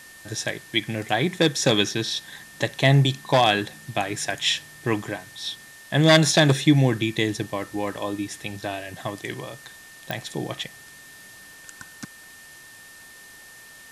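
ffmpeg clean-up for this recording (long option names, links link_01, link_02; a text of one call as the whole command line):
ffmpeg -i in.wav -af "adeclick=threshold=4,bandreject=frequency=1800:width=30,afftdn=noise_reduction=20:noise_floor=-46" out.wav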